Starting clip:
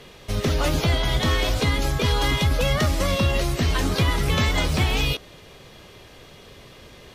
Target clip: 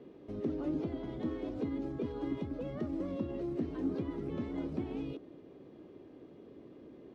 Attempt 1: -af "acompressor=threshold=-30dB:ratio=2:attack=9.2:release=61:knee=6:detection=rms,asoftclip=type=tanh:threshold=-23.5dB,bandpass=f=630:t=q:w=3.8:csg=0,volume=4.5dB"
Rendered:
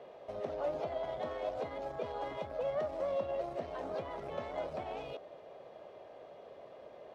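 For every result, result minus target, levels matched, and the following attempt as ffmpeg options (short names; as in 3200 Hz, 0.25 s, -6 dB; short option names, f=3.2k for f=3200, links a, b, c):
250 Hz band -14.0 dB; soft clip: distortion +11 dB
-af "acompressor=threshold=-30dB:ratio=2:attack=9.2:release=61:knee=6:detection=rms,asoftclip=type=tanh:threshold=-23.5dB,bandpass=f=300:t=q:w=3.8:csg=0,volume=4.5dB"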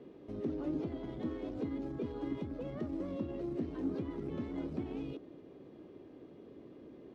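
soft clip: distortion +11 dB
-af "acompressor=threshold=-30dB:ratio=2:attack=9.2:release=61:knee=6:detection=rms,asoftclip=type=tanh:threshold=-16.5dB,bandpass=f=300:t=q:w=3.8:csg=0,volume=4.5dB"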